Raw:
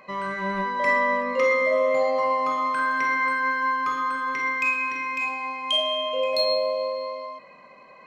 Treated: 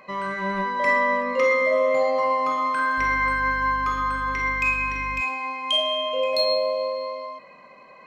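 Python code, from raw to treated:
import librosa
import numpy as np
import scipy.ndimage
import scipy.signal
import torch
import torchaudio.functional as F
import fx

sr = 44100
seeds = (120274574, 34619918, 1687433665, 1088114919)

y = fx.dmg_buzz(x, sr, base_hz=50.0, harmonics=4, level_db=-37.0, tilt_db=-8, odd_only=False, at=(2.97, 5.2), fade=0.02)
y = y * 10.0 ** (1.0 / 20.0)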